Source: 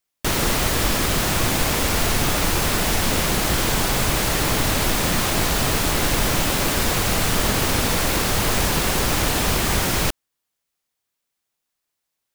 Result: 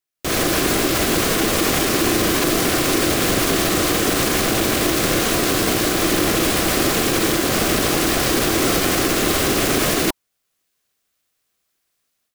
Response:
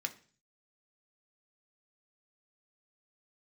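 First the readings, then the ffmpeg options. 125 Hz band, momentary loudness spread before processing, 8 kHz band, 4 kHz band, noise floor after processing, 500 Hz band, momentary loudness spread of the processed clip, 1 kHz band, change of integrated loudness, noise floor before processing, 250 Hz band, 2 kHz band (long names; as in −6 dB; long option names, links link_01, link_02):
−2.0 dB, 0 LU, +2.0 dB, +2.0 dB, −74 dBFS, +5.5 dB, 1 LU, +1.0 dB, +2.5 dB, −80 dBFS, +6.0 dB, +2.0 dB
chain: -af "alimiter=limit=-13.5dB:level=0:latency=1,dynaudnorm=framelen=170:gausssize=3:maxgain=14dB,aeval=exprs='val(0)*sin(2*PI*330*n/s)':channel_layout=same,asuperstop=centerf=900:order=4:qfactor=6.7,volume=-3.5dB"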